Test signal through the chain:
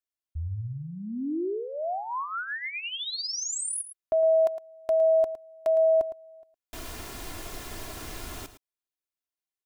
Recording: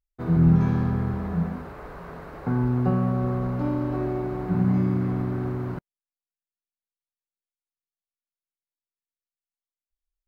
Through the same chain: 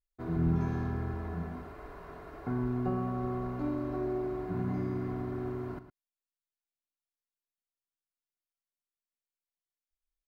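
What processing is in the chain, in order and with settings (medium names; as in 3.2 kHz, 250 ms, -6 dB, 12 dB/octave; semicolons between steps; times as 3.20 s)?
comb 2.9 ms, depth 50%; dynamic bell 2.5 kHz, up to -4 dB, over -36 dBFS, Q 0.79; delay 110 ms -12.5 dB; trim -8 dB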